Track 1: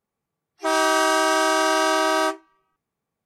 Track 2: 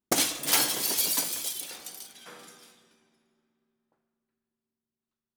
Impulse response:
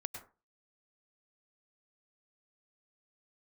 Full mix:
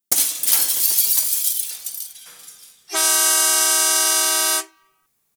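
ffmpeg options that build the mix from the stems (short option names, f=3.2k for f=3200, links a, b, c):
-filter_complex "[0:a]adelay=2300,volume=0.5dB[a];[1:a]asubboost=boost=11.5:cutoff=90,volume=-7.5dB[b];[a][b]amix=inputs=2:normalize=0,crystalizer=i=8.5:c=0,acrossover=split=1700|7300[c][d][e];[c]acompressor=threshold=-28dB:ratio=4[f];[d]acompressor=threshold=-24dB:ratio=4[g];[e]acompressor=threshold=-15dB:ratio=4[h];[f][g][h]amix=inputs=3:normalize=0"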